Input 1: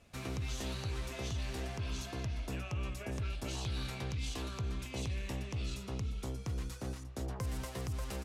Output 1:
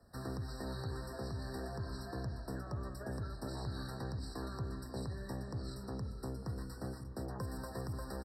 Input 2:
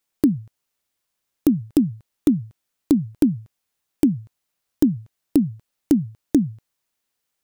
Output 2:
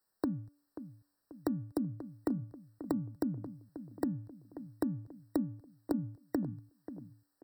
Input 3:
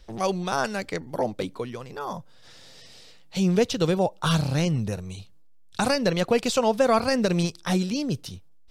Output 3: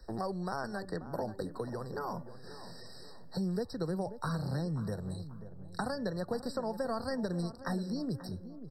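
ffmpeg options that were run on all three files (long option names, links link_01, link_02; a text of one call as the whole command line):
ffmpeg -i in.wav -filter_complex "[0:a]acrossover=split=130[link_01][link_02];[link_01]aeval=exprs='(mod(18.8*val(0)+1,2)-1)/18.8':channel_layout=same[link_03];[link_02]equalizer=frequency=3500:width_type=o:width=0.63:gain=-5.5[link_04];[link_03][link_04]amix=inputs=2:normalize=0,acrossover=split=110|3500[link_05][link_06][link_07];[link_05]acompressor=threshold=-47dB:ratio=4[link_08];[link_06]acompressor=threshold=-35dB:ratio=4[link_09];[link_07]acompressor=threshold=-51dB:ratio=4[link_10];[link_08][link_09][link_10]amix=inputs=3:normalize=0,bandreject=frequency=289.1:width_type=h:width=4,bandreject=frequency=578.2:width_type=h:width=4,bandreject=frequency=867.3:width_type=h:width=4,bandreject=frequency=1156.4:width_type=h:width=4,bandreject=frequency=1445.5:width_type=h:width=4,bandreject=frequency=1734.6:width_type=h:width=4,bandreject=frequency=2023.7:width_type=h:width=4,bandreject=frequency=2312.8:width_type=h:width=4,bandreject=frequency=2601.9:width_type=h:width=4,asplit=2[link_11][link_12];[link_12]adelay=536,lowpass=frequency=1100:poles=1,volume=-12dB,asplit=2[link_13][link_14];[link_14]adelay=536,lowpass=frequency=1100:poles=1,volume=0.47,asplit=2[link_15][link_16];[link_16]adelay=536,lowpass=frequency=1100:poles=1,volume=0.47,asplit=2[link_17][link_18];[link_18]adelay=536,lowpass=frequency=1100:poles=1,volume=0.47,asplit=2[link_19][link_20];[link_20]adelay=536,lowpass=frequency=1100:poles=1,volume=0.47[link_21];[link_13][link_15][link_17][link_19][link_21]amix=inputs=5:normalize=0[link_22];[link_11][link_22]amix=inputs=2:normalize=0,afftfilt=real='re*eq(mod(floor(b*sr/1024/1900),2),0)':imag='im*eq(mod(floor(b*sr/1024/1900),2),0)':win_size=1024:overlap=0.75" out.wav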